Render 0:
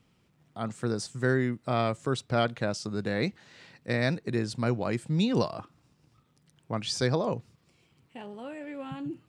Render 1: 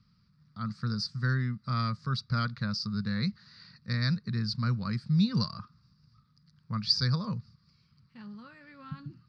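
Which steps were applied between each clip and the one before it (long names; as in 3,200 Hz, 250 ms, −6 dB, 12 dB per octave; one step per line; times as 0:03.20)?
drawn EQ curve 210 Hz 0 dB, 310 Hz −22 dB, 500 Hz −19 dB, 740 Hz −26 dB, 1,200 Hz −1 dB, 3,100 Hz −16 dB, 4,700 Hz +8 dB, 7,300 Hz −25 dB
level +2.5 dB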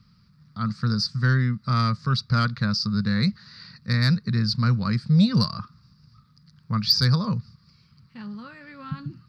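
soft clipping −17.5 dBFS, distortion −23 dB
level +8.5 dB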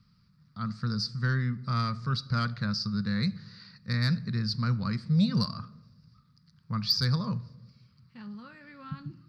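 convolution reverb RT60 1.0 s, pre-delay 6 ms, DRR 16 dB
level −6.5 dB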